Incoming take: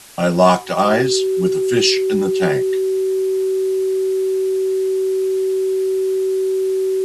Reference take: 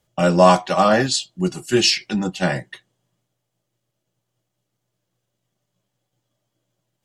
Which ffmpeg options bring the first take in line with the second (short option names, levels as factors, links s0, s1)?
-af "bandreject=f=380:w=30,afwtdn=0.01"